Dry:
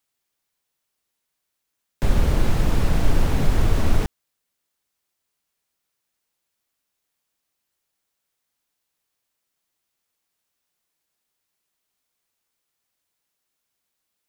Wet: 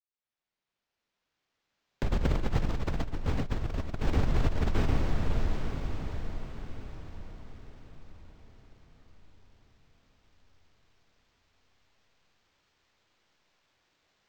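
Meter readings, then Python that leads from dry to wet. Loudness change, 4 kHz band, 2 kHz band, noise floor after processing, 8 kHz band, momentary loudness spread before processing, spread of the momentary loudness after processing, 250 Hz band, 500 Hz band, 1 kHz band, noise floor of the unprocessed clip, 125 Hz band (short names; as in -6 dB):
-9.5 dB, -7.0 dB, -6.0 dB, under -85 dBFS, -12.5 dB, 5 LU, 17 LU, -5.5 dB, -5.0 dB, -5.5 dB, -79 dBFS, -5.5 dB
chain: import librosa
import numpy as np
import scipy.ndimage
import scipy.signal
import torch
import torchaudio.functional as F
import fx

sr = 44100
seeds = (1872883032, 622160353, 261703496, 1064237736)

y = fx.fade_in_head(x, sr, length_s=4.07)
y = fx.echo_diffused(y, sr, ms=810, feedback_pct=44, wet_db=-8)
y = fx.over_compress(y, sr, threshold_db=-27.0, ratio=-1.0)
y = np.interp(np.arange(len(y)), np.arange(len(y))[::4], y[::4])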